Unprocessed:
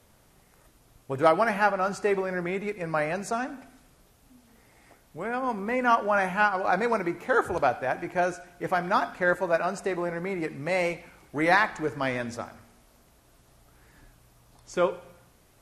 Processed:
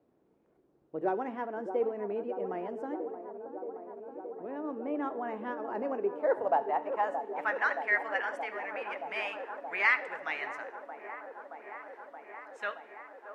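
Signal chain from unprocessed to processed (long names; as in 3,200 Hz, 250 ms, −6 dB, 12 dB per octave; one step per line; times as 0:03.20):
band-pass filter sweep 310 Hz → 1,600 Hz, 0:06.90–0:09.01
speed change +17%
mains-hum notches 50/100/150 Hz
delay with a band-pass on its return 624 ms, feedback 81%, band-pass 590 Hz, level −8.5 dB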